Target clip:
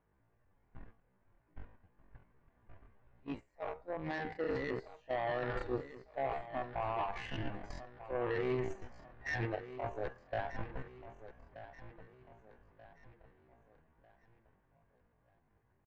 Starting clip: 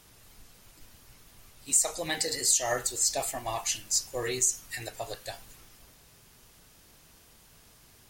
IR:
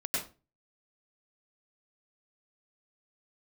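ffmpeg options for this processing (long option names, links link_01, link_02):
-filter_complex "[0:a]lowpass=frequency=1700:width=0.5412,lowpass=frequency=1700:width=1.3066,bandreject=frequency=1300:width=7.2,areverse,acompressor=threshold=-42dB:ratio=5,areverse,alimiter=level_in=19.5dB:limit=-24dB:level=0:latency=1:release=72,volume=-19.5dB,agate=range=-13dB:threshold=-52dB:ratio=16:detection=peak,aeval=exprs='0.00668*(cos(1*acos(clip(val(0)/0.00668,-1,1)))-cos(1*PI/2))+0.00119*(cos(3*acos(clip(val(0)/0.00668,-1,1)))-cos(3*PI/2))':channel_layout=same,dynaudnorm=framelen=330:gausssize=11:maxgain=12dB,asplit=2[link_01][link_02];[link_02]aecho=0:1:628|1256|1884|2512:0.2|0.0818|0.0335|0.0138[link_03];[link_01][link_03]amix=inputs=2:normalize=0,atempo=0.51,volume=5.5dB"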